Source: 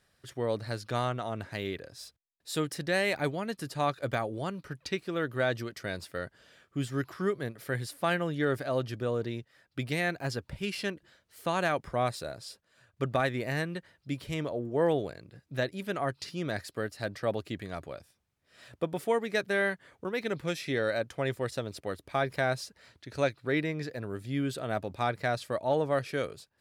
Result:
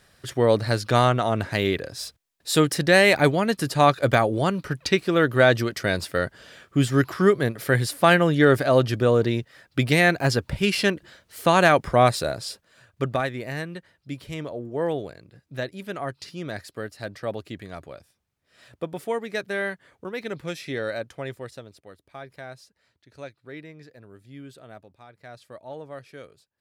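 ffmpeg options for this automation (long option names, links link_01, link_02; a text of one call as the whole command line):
ffmpeg -i in.wav -af "volume=21.5dB,afade=type=out:start_time=12.32:duration=0.99:silence=0.266073,afade=type=out:start_time=20.93:duration=0.88:silence=0.266073,afade=type=out:start_time=24.64:duration=0.43:silence=0.354813,afade=type=in:start_time=25.07:duration=0.4:silence=0.334965" out.wav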